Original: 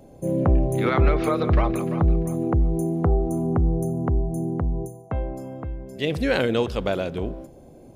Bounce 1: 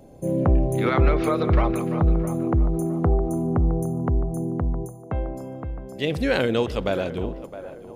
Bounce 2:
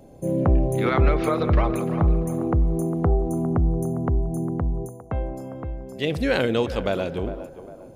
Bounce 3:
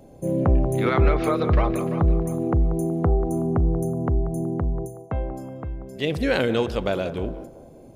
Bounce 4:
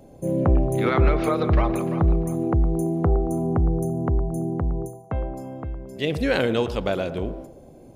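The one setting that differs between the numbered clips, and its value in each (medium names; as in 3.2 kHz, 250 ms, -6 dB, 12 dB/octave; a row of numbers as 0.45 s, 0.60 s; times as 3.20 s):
band-passed feedback delay, time: 663 ms, 404 ms, 186 ms, 112 ms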